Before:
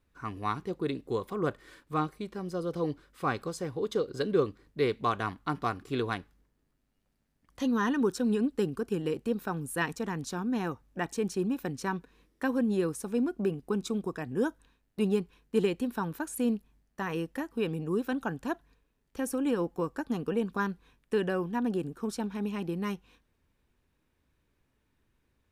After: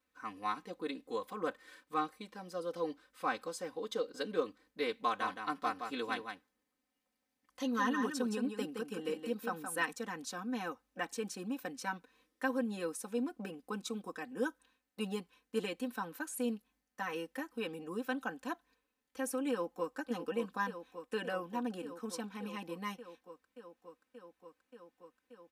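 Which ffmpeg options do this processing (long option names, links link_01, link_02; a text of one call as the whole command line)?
ffmpeg -i in.wav -filter_complex "[0:a]asettb=1/sr,asplit=3[link_01][link_02][link_03];[link_01]atrim=end=5.034[link_04];[link_02]atrim=start=5.03:end=9.85,asetpts=PTS-STARTPTS,afade=type=in:duration=0.004:curve=qsin,afade=type=out:start_time=4.816:duration=0.004:curve=qsin,aecho=1:1:169:0.473,atrim=end_sample=212562[link_05];[link_03]atrim=start=9.846[link_06];[link_04][link_05]acrossfade=duration=0.004:curve1=hsin:curve2=qsin[link_07];[link_07][link_06]acrossfade=duration=0.004:curve1=qsin:curve2=hsin,asplit=2[link_08][link_09];[link_09]afade=type=in:start_time=19.5:duration=0.01,afade=type=out:start_time=19.96:duration=0.01,aecho=0:1:580|1160|1740|2320|2900|3480|4060|4640|5220|5800|6380|6960:0.375837|0.319462|0.271543|0.230811|0.196189|0.166761|0.141747|0.120485|0.102412|0.0870503|0.0739928|0.0628939[link_10];[link_08][link_10]amix=inputs=2:normalize=0,highpass=frequency=580:poles=1,aecho=1:1:3.9:0.91,volume=-5dB" out.wav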